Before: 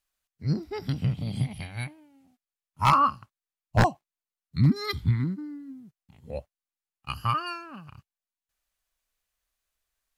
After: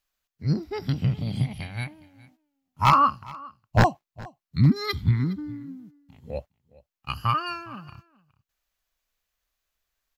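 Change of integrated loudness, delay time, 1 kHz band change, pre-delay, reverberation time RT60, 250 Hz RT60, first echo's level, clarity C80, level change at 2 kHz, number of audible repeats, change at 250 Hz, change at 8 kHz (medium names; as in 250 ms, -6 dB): +2.5 dB, 413 ms, +2.5 dB, no reverb, no reverb, no reverb, -22.0 dB, no reverb, +2.5 dB, 1, +2.5 dB, no reading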